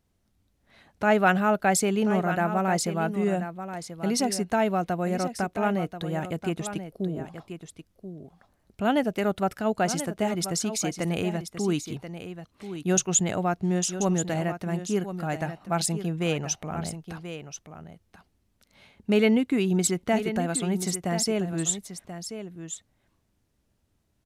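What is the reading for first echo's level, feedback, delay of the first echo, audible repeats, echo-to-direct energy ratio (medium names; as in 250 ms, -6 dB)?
-10.5 dB, no regular repeats, 1034 ms, 1, -10.5 dB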